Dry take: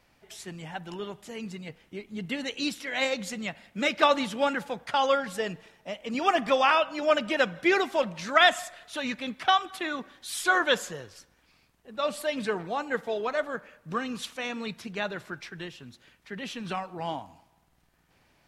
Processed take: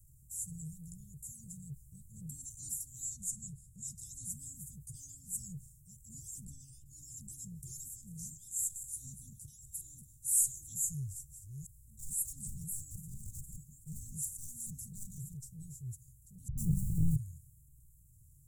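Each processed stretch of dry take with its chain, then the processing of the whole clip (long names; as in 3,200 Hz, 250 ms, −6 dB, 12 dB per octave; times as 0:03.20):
0:03.09–0:04.27: low-pass filter 11,000 Hz + parametric band 320 Hz −5.5 dB 0.96 octaves
0:06.45–0:06.86: high-shelf EQ 3,100 Hz −9 dB + double-tracking delay 14 ms −11 dB
0:07.89–0:10.33: feedback delay that plays each chunk backwards 118 ms, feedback 44%, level −13 dB + downward compressor 2.5 to 1, threshold −28 dBFS
0:10.88–0:15.37: delay that plays each chunk backwards 394 ms, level −5.5 dB + hard clipping −27.5 dBFS
0:16.48–0:17.16: converter with a step at zero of −35.5 dBFS + bass and treble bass +15 dB, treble −8 dB + all-pass dispersion highs, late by 97 ms, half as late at 720 Hz
whole clip: Chebyshev band-stop filter 140–7,300 Hz, order 5; transient designer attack −5 dB, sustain +2 dB; level +11.5 dB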